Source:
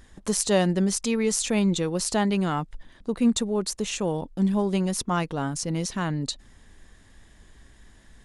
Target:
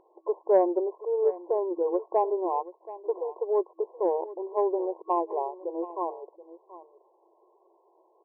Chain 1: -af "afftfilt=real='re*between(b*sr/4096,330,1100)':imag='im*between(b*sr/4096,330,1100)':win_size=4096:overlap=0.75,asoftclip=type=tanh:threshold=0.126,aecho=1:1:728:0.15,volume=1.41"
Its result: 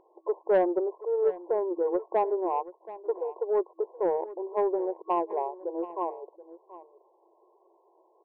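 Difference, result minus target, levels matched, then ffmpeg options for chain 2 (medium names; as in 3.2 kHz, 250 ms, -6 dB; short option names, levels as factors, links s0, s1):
saturation: distortion +12 dB
-af "afftfilt=real='re*between(b*sr/4096,330,1100)':imag='im*between(b*sr/4096,330,1100)':win_size=4096:overlap=0.75,asoftclip=type=tanh:threshold=0.316,aecho=1:1:728:0.15,volume=1.41"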